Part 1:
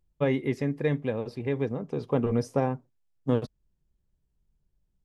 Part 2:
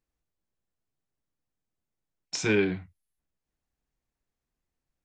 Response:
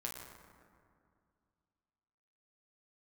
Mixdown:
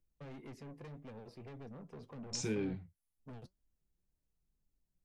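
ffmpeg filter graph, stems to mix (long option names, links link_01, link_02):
-filter_complex "[0:a]acrossover=split=270|3000[link_01][link_02][link_03];[link_02]acompressor=threshold=-33dB:ratio=6[link_04];[link_01][link_04][link_03]amix=inputs=3:normalize=0,asoftclip=type=tanh:threshold=-35dB,volume=-6.5dB[link_05];[1:a]equalizer=frequency=1600:width_type=o:width=2.8:gain=-12,alimiter=level_in=0.5dB:limit=-24dB:level=0:latency=1:release=427,volume=-0.5dB,volume=1.5dB[link_06];[link_05][link_06]amix=inputs=2:normalize=0,equalizer=frequency=3500:width=4.2:gain=-3,flanger=delay=3.2:depth=3:regen=74:speed=1.9:shape=triangular"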